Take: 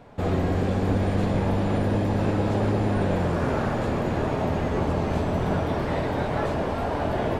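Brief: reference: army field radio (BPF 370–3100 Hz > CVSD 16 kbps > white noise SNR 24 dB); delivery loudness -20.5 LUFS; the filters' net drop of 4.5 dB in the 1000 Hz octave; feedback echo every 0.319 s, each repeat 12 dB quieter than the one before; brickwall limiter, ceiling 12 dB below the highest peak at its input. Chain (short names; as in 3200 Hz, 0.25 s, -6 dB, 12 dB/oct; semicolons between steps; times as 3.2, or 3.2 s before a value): bell 1000 Hz -6 dB; limiter -23.5 dBFS; BPF 370–3100 Hz; feedback echo 0.319 s, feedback 25%, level -12 dB; CVSD 16 kbps; white noise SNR 24 dB; gain +16.5 dB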